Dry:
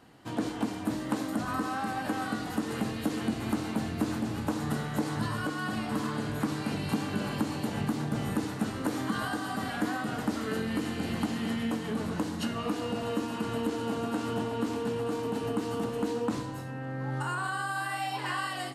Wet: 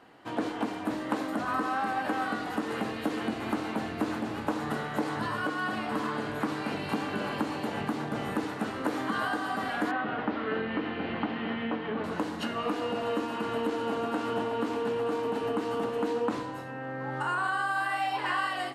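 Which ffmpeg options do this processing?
-filter_complex "[0:a]asettb=1/sr,asplit=3[a][b][c];[a]atrim=end=9.914[d];[b]atrim=start=9.91:end=12.04,asetpts=PTS-STARTPTS,afade=t=in:d=0.004:c=qsin,afade=t=out:st=2.126:d=0.004:c=qsin,lowpass=f=3.4k:w=0.5412,lowpass=f=3.4k:w=1.3066[e];[c]atrim=start=12.036[f];[d][e]acrossfade=d=0.004:c1=hsin:c2=qsin[g];[g][f]acrossfade=d=0.004:c1=qsin:c2=hsin,bass=f=250:g=-12,treble=f=4k:g=-11,volume=4dB"

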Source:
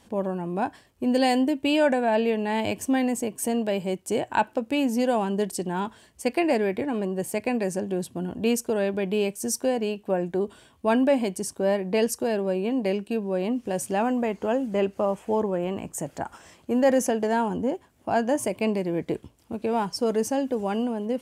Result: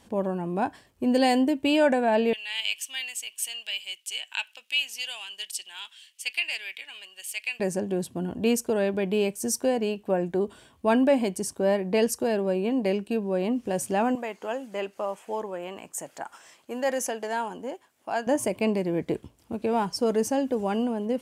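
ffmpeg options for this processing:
-filter_complex "[0:a]asettb=1/sr,asplit=3[a][b][c];[a]atrim=end=2.334[d];[b]atrim=start=2.33:end=7.6,asetpts=PTS-STARTPTS,afade=t=in:d=0.004:c=qsin,afade=t=out:st=5.266:d=0.004:c=qsin,highpass=f=2.9k:t=q:w=3.4[e];[c]atrim=start=7.596[f];[d][e]acrossfade=d=0.004:c1=hsin:c2=qsin[g];[g][f]acrossfade=d=0.004:c1=qsin:c2=hsin,asettb=1/sr,asplit=3[h][i][j];[h]atrim=end=14.154[k];[i]atrim=start=14.15:end=18.27,asetpts=PTS-STARTPTS,afade=t=in:d=0.004:c=qsin,afade=t=out:st=4.116:d=0.004:c=qsin,highpass=f=1k:p=1[l];[j]atrim=start=18.266[m];[k][l]acrossfade=d=0.004:c1=hsin:c2=qsin[n];[n][m]acrossfade=d=0.004:c1=qsin:c2=hsin"

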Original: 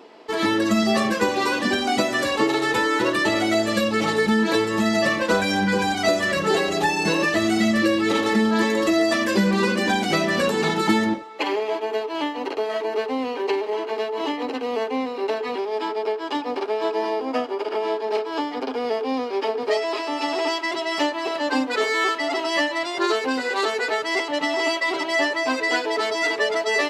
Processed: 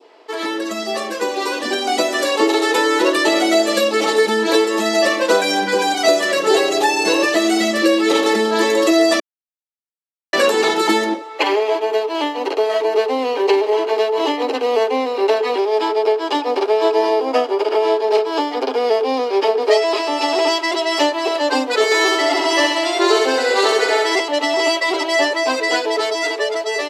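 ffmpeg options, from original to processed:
-filter_complex "[0:a]asplit=3[a][b][c];[a]afade=t=out:st=21.9:d=0.02[d];[b]aecho=1:1:67|134|201|268|335|402|469|536:0.708|0.404|0.23|0.131|0.0747|0.0426|0.0243|0.0138,afade=t=in:st=21.9:d=0.02,afade=t=out:st=24.15:d=0.02[e];[c]afade=t=in:st=24.15:d=0.02[f];[d][e][f]amix=inputs=3:normalize=0,asplit=3[g][h][i];[g]atrim=end=9.2,asetpts=PTS-STARTPTS,afade=t=out:st=9.196:d=0.004:c=hsin[j];[h]atrim=start=9.2:end=10.33,asetpts=PTS-STARTPTS,volume=0[k];[i]atrim=start=10.33,asetpts=PTS-STARTPTS,afade=t=in:d=0.004:c=hsin[l];[j][k][l]concat=n=3:v=0:a=1,highpass=f=330:w=0.5412,highpass=f=330:w=1.3066,adynamicequalizer=threshold=0.0141:dfrequency=1600:dqfactor=0.77:tfrequency=1600:tqfactor=0.77:attack=5:release=100:ratio=0.375:range=3:mode=cutabove:tftype=bell,dynaudnorm=f=520:g=7:m=11.5dB"

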